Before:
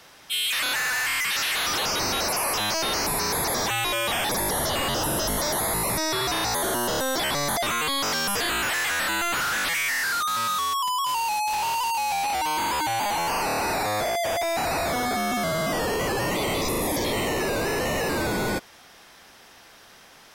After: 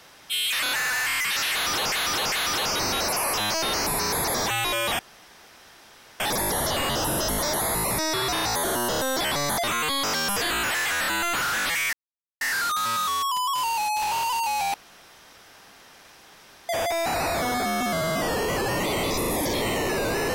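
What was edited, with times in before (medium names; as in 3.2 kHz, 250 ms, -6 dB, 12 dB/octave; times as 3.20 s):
1.52–1.92 s: loop, 3 plays
4.19 s: insert room tone 1.21 s
9.92 s: insert silence 0.48 s
12.25–14.20 s: room tone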